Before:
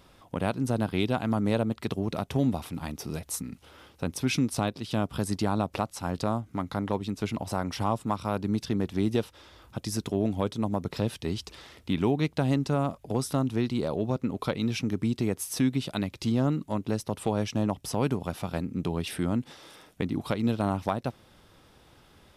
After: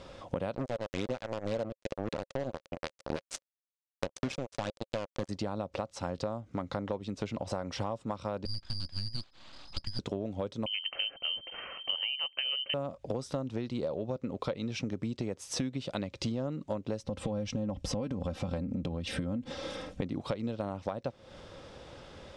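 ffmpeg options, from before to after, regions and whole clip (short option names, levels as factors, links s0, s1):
-filter_complex "[0:a]asettb=1/sr,asplit=3[s0][s1][s2];[s0]atrim=end=0.554[s3];[s1]atrim=start=0.55:end=5.29,asetpts=PTS-STARTPTS,afade=t=in:d=0.004:c=qsin,afade=t=out:st=4.736:d=0.004:c=qsin,highpass=f=140:p=1,aphaser=in_gain=1:out_gain=1:delay=2:decay=0.52:speed=1.9:type=sinusoidal,acrusher=bits=3:mix=0:aa=0.5[s4];[s2]atrim=start=5.286[s5];[s3][s4]acrossfade=d=0.004:c1=hsin:c2=qsin[s6];[s6][s5]acrossfade=d=0.004:c1=qsin:c2=hsin,asettb=1/sr,asplit=3[s7][s8][s9];[s7]atrim=end=8.454[s10];[s8]atrim=start=8.45:end=9.99,asetpts=PTS-STARTPTS,afade=t=in:d=0.004:c=qsin,afade=t=out:st=1.536:d=0.004:c=qsin,lowpass=f=2200:t=q:w=0.5098,lowpass=f=2200:t=q:w=0.6013,lowpass=f=2200:t=q:w=0.9,lowpass=f=2200:t=q:w=2.563,afreqshift=-2600,aeval=exprs='abs(val(0))':c=same,equalizer=f=470:t=o:w=0.68:g=-14[s11];[s9]atrim=start=9.986[s12];[s10][s11]acrossfade=d=0.004:c1=hsin:c2=qsin[s13];[s13][s12]acrossfade=d=0.004:c1=qsin:c2=hsin,asettb=1/sr,asplit=3[s14][s15][s16];[s14]atrim=end=10.664[s17];[s15]atrim=start=10.66:end=12.74,asetpts=PTS-STARTPTS,afade=t=in:d=0.004:c=qsin,afade=t=out:st=2.076:d=0.004:c=qsin,equalizer=f=75:t=o:w=0.99:g=8.5,lowpass=f=2700:t=q:w=0.5098,lowpass=f=2700:t=q:w=0.6013,lowpass=f=2700:t=q:w=0.9,lowpass=f=2700:t=q:w=2.563,afreqshift=-3200[s18];[s16]atrim=start=12.736[s19];[s17][s18]acrossfade=d=0.004:c1=hsin:c2=qsin[s20];[s20][s19]acrossfade=d=0.004:c1=qsin:c2=hsin,asettb=1/sr,asplit=3[s21][s22][s23];[s21]atrim=end=17.044[s24];[s22]atrim=start=17.04:end=20.02,asetpts=PTS-STARTPTS,afade=t=in:d=0.004:c=qsin,afade=t=out:st=2.976:d=0.004:c=qsin,bass=f=250:g=12,treble=f=4000:g=-1,aecho=1:1:3.8:0.57,atrim=end_sample=131418,acompressor=threshold=0.0501:ratio=10:attack=3.2:release=140:knee=1:detection=peak[s25];[s23]atrim=start=20.016[s26];[s24][s25]acrossfade=d=0.004:c1=hsin:c2=qsin[s27];[s27][s26]acrossfade=d=0.004:c1=qsin:c2=hsin,lowpass=f=7500:w=0.5412,lowpass=f=7500:w=1.3066,equalizer=f=540:w=4.1:g=11,acompressor=threshold=0.0141:ratio=10,volume=2"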